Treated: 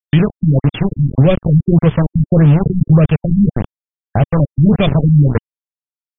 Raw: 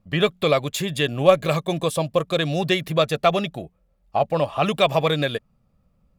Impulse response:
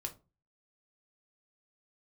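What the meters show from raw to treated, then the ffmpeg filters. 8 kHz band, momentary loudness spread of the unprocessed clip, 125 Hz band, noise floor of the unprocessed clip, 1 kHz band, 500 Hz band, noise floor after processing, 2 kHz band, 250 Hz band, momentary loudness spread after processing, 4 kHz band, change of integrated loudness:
under -40 dB, 8 LU, +17.0 dB, -66 dBFS, -3.5 dB, +0.5 dB, under -85 dBFS, -2.5 dB, +14.0 dB, 6 LU, n/a, +8.5 dB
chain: -filter_complex "[0:a]bandreject=f=60:t=h:w=6,bandreject=f=120:t=h:w=6,bandreject=f=180:t=h:w=6,bandreject=f=240:t=h:w=6,bandreject=f=300:t=h:w=6,bandreject=f=360:t=h:w=6,bandreject=f=420:t=h:w=6,acrossover=split=1300[a][b];[a]aeval=exprs='val(0)*(1-0.5/2+0.5/2*cos(2*PI*1.7*n/s))':c=same[c];[b]aeval=exprs='val(0)*(1-0.5/2-0.5/2*cos(2*PI*1.7*n/s))':c=same[d];[c][d]amix=inputs=2:normalize=0,asubboost=boost=3:cutoff=120,asplit=2[e][f];[f]asoftclip=type=tanh:threshold=-21.5dB,volume=-8dB[g];[e][g]amix=inputs=2:normalize=0,acrossover=split=440|3000[h][i][j];[i]acompressor=threshold=-46dB:ratio=2[k];[h][k][j]amix=inputs=3:normalize=0,aeval=exprs='val(0)*gte(abs(val(0)),0.0447)':c=same,bass=f=250:g=12,treble=f=4k:g=-3,alimiter=level_in=13dB:limit=-1dB:release=50:level=0:latency=1,afftfilt=real='re*lt(b*sr/1024,260*pow(3600/260,0.5+0.5*sin(2*PI*1.7*pts/sr)))':imag='im*lt(b*sr/1024,260*pow(3600/260,0.5+0.5*sin(2*PI*1.7*pts/sr)))':win_size=1024:overlap=0.75,volume=-1.5dB"

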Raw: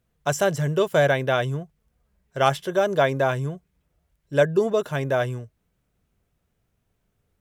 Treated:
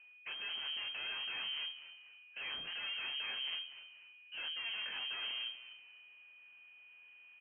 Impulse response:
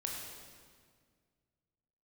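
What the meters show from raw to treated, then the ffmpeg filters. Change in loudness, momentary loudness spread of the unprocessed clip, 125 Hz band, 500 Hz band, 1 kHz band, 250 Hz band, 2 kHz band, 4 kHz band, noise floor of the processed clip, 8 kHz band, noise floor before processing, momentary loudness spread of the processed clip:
-16.5 dB, 11 LU, under -40 dB, under -40 dB, -27.5 dB, -38.0 dB, -13.0 dB, 0.0 dB, -60 dBFS, under -40 dB, -74 dBFS, 19 LU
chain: -filter_complex "[0:a]highpass=f=350:p=1,areverse,acompressor=threshold=-33dB:ratio=16,areverse,aeval=exprs='(tanh(282*val(0)+0.6)-tanh(0.6))/282':c=same,flanger=delay=20:depth=7.3:speed=1.2,aeval=exprs='val(0)+0.000282*sin(2*PI*730*n/s)':c=same,aeval=exprs='0.00596*(cos(1*acos(clip(val(0)/0.00596,-1,1)))-cos(1*PI/2))+0.00119*(cos(4*acos(clip(val(0)/0.00596,-1,1)))-cos(4*PI/2))+0.0015*(cos(5*acos(clip(val(0)/0.00596,-1,1)))-cos(5*PI/2))':c=same,asplit=4[a][b][c][d];[b]adelay=243,afreqshift=83,volume=-14dB[e];[c]adelay=486,afreqshift=166,volume=-23.4dB[f];[d]adelay=729,afreqshift=249,volume=-32.7dB[g];[a][e][f][g]amix=inputs=4:normalize=0,lowpass=f=2.7k:t=q:w=0.5098,lowpass=f=2.7k:t=q:w=0.6013,lowpass=f=2.7k:t=q:w=0.9,lowpass=f=2.7k:t=q:w=2.563,afreqshift=-3200,volume=7dB"

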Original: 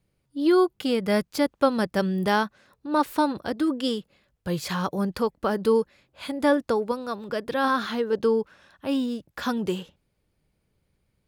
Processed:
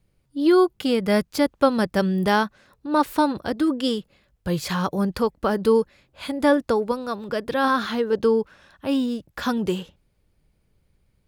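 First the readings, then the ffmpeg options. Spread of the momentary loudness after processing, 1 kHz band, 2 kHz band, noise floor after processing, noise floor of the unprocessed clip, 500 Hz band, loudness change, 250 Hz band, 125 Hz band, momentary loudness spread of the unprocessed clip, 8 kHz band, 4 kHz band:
10 LU, +2.5 dB, +2.5 dB, -68 dBFS, -74 dBFS, +2.5 dB, +3.0 dB, +3.0 dB, +3.5 dB, 10 LU, +2.5 dB, +2.5 dB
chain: -af "lowshelf=f=60:g=10.5,volume=2.5dB"

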